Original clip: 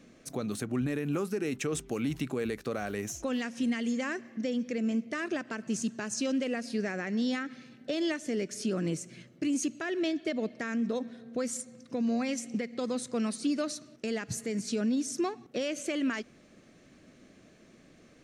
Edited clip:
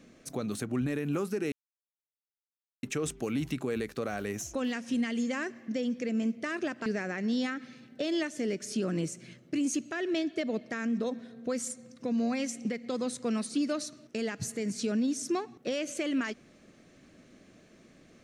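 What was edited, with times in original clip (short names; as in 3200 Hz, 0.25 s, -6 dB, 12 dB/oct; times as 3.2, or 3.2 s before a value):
1.52 insert silence 1.31 s
5.55–6.75 cut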